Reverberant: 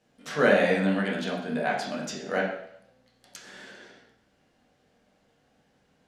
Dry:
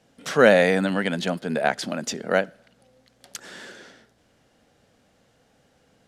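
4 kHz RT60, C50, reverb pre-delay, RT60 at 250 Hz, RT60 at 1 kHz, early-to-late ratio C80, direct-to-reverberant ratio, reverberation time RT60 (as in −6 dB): 0.65 s, 4.0 dB, 5 ms, 0.70 s, 0.70 s, 7.0 dB, −4.0 dB, 0.70 s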